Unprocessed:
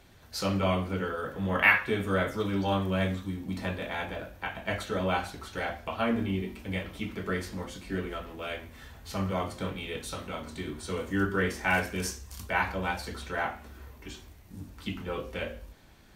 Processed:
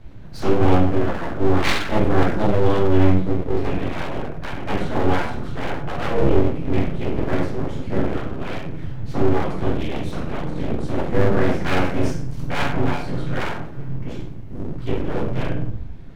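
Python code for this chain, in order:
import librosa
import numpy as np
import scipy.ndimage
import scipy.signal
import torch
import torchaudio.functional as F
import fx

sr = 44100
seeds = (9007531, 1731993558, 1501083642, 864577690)

p1 = fx.riaa(x, sr, side='playback')
p2 = fx.room_flutter(p1, sr, wall_m=8.0, rt60_s=0.38)
p3 = np.clip(p2, -10.0 ** (-20.5 / 20.0), 10.0 ** (-20.5 / 20.0))
p4 = p2 + (p3 * librosa.db_to_amplitude(-8.0))
p5 = fx.room_shoebox(p4, sr, seeds[0], volume_m3=280.0, walls='furnished', distance_m=2.7)
p6 = np.abs(p5)
y = p6 * librosa.db_to_amplitude(-3.0)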